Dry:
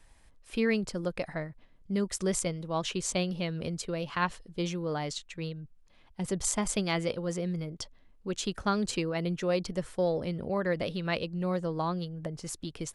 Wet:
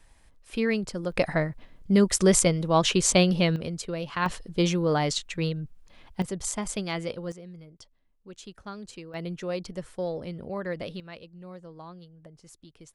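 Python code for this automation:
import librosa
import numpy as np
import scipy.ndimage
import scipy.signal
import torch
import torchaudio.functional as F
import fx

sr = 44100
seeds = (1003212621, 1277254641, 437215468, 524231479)

y = fx.gain(x, sr, db=fx.steps((0.0, 1.5), (1.12, 10.0), (3.56, 1.5), (4.26, 8.5), (6.22, -1.5), (7.32, -11.5), (9.14, -3.0), (11.0, -13.0)))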